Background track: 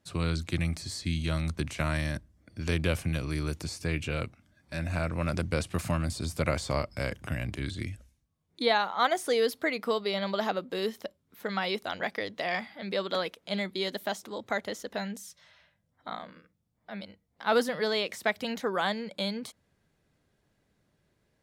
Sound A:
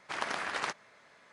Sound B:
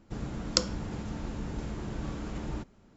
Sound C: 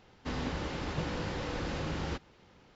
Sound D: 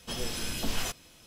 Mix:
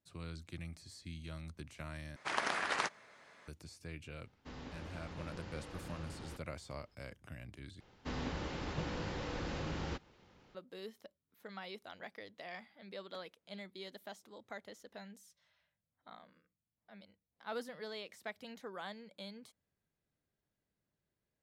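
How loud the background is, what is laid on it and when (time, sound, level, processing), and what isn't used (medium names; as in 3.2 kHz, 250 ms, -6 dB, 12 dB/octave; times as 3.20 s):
background track -16.5 dB
2.16 s: replace with A -0.5 dB
4.20 s: add C -13.5 dB
7.80 s: replace with C -4.5 dB
not used: B, D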